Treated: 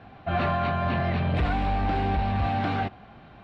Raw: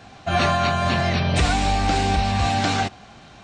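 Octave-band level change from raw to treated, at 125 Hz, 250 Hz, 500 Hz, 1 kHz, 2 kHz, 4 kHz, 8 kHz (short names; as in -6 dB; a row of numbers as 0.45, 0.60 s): -4.0 dB, -4.0 dB, -5.0 dB, -5.5 dB, -8.0 dB, -14.5 dB, under -30 dB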